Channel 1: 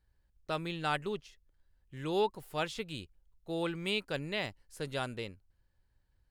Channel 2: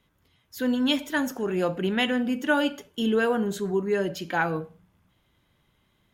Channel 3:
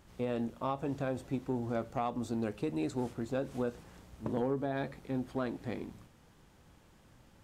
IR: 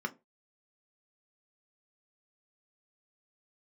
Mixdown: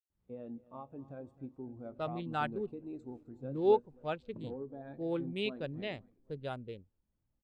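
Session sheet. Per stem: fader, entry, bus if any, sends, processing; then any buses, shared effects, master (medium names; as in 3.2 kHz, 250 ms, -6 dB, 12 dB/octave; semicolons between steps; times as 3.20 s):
+1.5 dB, 1.50 s, no send, no echo send, local Wiener filter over 25 samples
mute
-6.0 dB, 0.10 s, no send, echo send -13.5 dB, none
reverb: none
echo: feedback delay 259 ms, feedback 54%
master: spectral contrast expander 1.5:1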